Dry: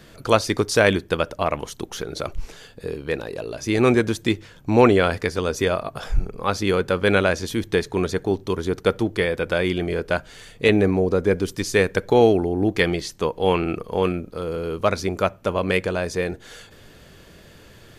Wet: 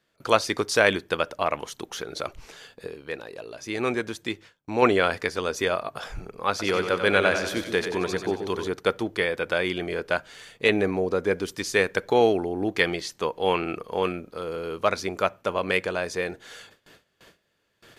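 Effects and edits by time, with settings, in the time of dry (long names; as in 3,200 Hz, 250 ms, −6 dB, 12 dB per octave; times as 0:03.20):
0:02.87–0:04.82: clip gain −4.5 dB
0:06.50–0:08.68: echo with a time of its own for lows and highs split 540 Hz, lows 130 ms, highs 92 ms, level −7 dB
whole clip: low-pass filter 1,600 Hz 6 dB per octave; noise gate with hold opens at −37 dBFS; spectral tilt +3.5 dB per octave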